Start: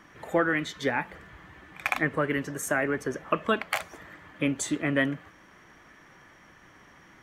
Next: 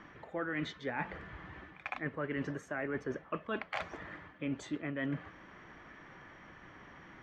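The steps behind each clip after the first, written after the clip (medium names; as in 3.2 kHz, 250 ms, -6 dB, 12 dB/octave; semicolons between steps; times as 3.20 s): reverse; compression 12:1, threshold -34 dBFS, peak gain reduction 16 dB; reverse; distance through air 190 m; trim +1.5 dB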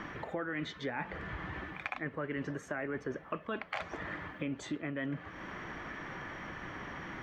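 compression 3:1, threshold -49 dBFS, peak gain reduction 13.5 dB; trim +11 dB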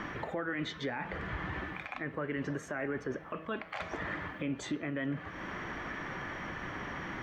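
de-hum 160.4 Hz, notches 38; peak limiter -29.5 dBFS, peak gain reduction 10.5 dB; trim +3.5 dB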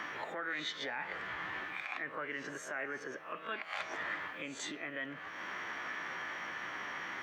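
reverse spectral sustain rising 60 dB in 0.33 s; high-pass 1.3 kHz 6 dB/octave; trim +1.5 dB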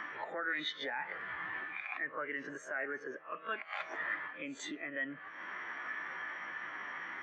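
spectral contrast expander 1.5:1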